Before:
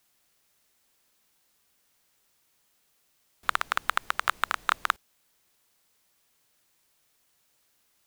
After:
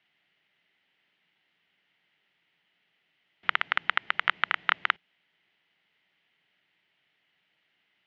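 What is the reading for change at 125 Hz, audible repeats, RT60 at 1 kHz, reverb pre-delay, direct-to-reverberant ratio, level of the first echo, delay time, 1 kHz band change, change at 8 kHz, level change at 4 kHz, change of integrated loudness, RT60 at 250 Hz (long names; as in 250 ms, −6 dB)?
can't be measured, no echo audible, no reverb audible, no reverb audible, no reverb audible, no echo audible, no echo audible, −2.5 dB, below −25 dB, +3.0 dB, +1.5 dB, no reverb audible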